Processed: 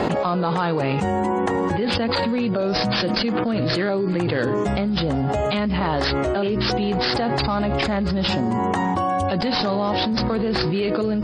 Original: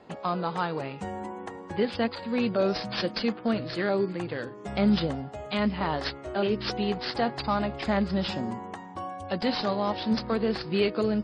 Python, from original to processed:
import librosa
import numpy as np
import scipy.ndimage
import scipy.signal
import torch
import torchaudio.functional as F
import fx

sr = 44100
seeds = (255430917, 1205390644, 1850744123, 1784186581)

y = fx.low_shelf(x, sr, hz=440.0, db=3.0)
y = fx.env_flatten(y, sr, amount_pct=100)
y = F.gain(torch.from_numpy(y), -4.5).numpy()